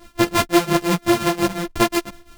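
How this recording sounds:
a buzz of ramps at a fixed pitch in blocks of 128 samples
tremolo triangle 5.7 Hz, depth 90%
a shimmering, thickened sound

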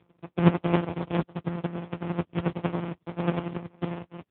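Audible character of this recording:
a buzz of ramps at a fixed pitch in blocks of 256 samples
chopped level 11 Hz, depth 60%, duty 30%
aliases and images of a low sample rate 1,700 Hz, jitter 20%
AMR narrowband

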